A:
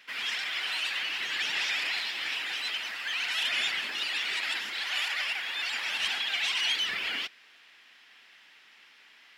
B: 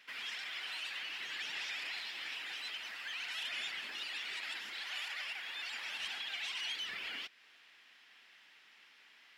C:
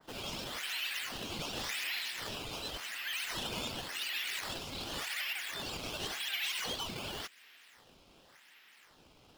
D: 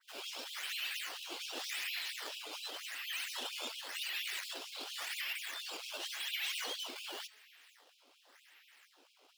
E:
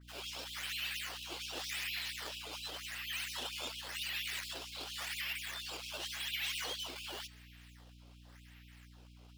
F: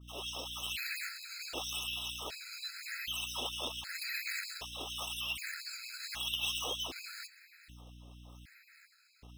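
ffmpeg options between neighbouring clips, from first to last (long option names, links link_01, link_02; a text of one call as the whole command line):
ffmpeg -i in.wav -af "acompressor=threshold=-42dB:ratio=1.5,volume=-5.5dB" out.wav
ffmpeg -i in.wav -filter_complex "[0:a]acrossover=split=260|550|3200[link_01][link_02][link_03][link_04];[link_03]acrusher=samples=13:mix=1:aa=0.000001:lfo=1:lforange=20.8:lforate=0.9[link_05];[link_01][link_02][link_05][link_04]amix=inputs=4:normalize=0,adynamicequalizer=threshold=0.00158:dfrequency=1800:dqfactor=0.7:tfrequency=1800:tqfactor=0.7:attack=5:release=100:ratio=0.375:range=2:mode=boostabove:tftype=highshelf,volume=2dB" out.wav
ffmpeg -i in.wav -af "bandreject=frequency=215:width_type=h:width=4,bandreject=frequency=430:width_type=h:width=4,bandreject=frequency=645:width_type=h:width=4,bandreject=frequency=860:width_type=h:width=4,bandreject=frequency=1075:width_type=h:width=4,bandreject=frequency=1290:width_type=h:width=4,bandreject=frequency=1505:width_type=h:width=4,bandreject=frequency=1720:width_type=h:width=4,bandreject=frequency=1935:width_type=h:width=4,bandreject=frequency=2150:width_type=h:width=4,bandreject=frequency=2365:width_type=h:width=4,bandreject=frequency=2580:width_type=h:width=4,bandreject=frequency=2795:width_type=h:width=4,bandreject=frequency=3010:width_type=h:width=4,bandreject=frequency=3225:width_type=h:width=4,bandreject=frequency=3440:width_type=h:width=4,bandreject=frequency=3655:width_type=h:width=4,bandreject=frequency=3870:width_type=h:width=4,bandreject=frequency=4085:width_type=h:width=4,bandreject=frequency=4300:width_type=h:width=4,bandreject=frequency=4515:width_type=h:width=4,bandreject=frequency=4730:width_type=h:width=4,bandreject=frequency=4945:width_type=h:width=4,bandreject=frequency=5160:width_type=h:width=4,bandreject=frequency=5375:width_type=h:width=4,bandreject=frequency=5590:width_type=h:width=4,bandreject=frequency=5805:width_type=h:width=4,bandreject=frequency=6020:width_type=h:width=4,bandreject=frequency=6235:width_type=h:width=4,bandreject=frequency=6450:width_type=h:width=4,bandreject=frequency=6665:width_type=h:width=4,afftfilt=real='re*gte(b*sr/1024,230*pow(2400/230,0.5+0.5*sin(2*PI*4.3*pts/sr)))':imag='im*gte(b*sr/1024,230*pow(2400/230,0.5+0.5*sin(2*PI*4.3*pts/sr)))':win_size=1024:overlap=0.75,volume=-2dB" out.wav
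ffmpeg -i in.wav -af "aeval=exprs='val(0)+0.00158*(sin(2*PI*60*n/s)+sin(2*PI*2*60*n/s)/2+sin(2*PI*3*60*n/s)/3+sin(2*PI*4*60*n/s)/4+sin(2*PI*5*60*n/s)/5)':channel_layout=same" out.wav
ffmpeg -i in.wav -filter_complex "[0:a]asplit=2[link_01][link_02];[link_02]acrusher=bits=4:mix=0:aa=0.000001,volume=-11dB[link_03];[link_01][link_03]amix=inputs=2:normalize=0,afftfilt=real='re*gt(sin(2*PI*0.65*pts/sr)*(1-2*mod(floor(b*sr/1024/1300),2)),0)':imag='im*gt(sin(2*PI*0.65*pts/sr)*(1-2*mod(floor(b*sr/1024/1300),2)),0)':win_size=1024:overlap=0.75,volume=4.5dB" out.wav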